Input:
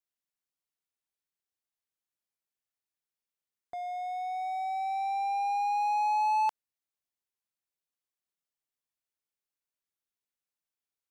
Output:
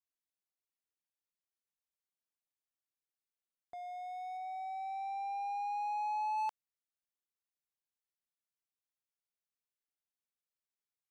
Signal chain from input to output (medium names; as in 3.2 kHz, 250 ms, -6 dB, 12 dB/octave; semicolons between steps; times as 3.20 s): 4.37–6.38 s: treble shelf 3.9 kHz -6 dB; trim -8 dB